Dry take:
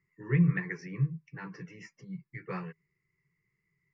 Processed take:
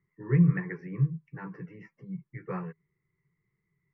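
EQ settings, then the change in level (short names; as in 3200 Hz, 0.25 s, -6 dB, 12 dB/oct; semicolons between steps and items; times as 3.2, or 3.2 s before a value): LPF 1400 Hz 12 dB/oct; +3.0 dB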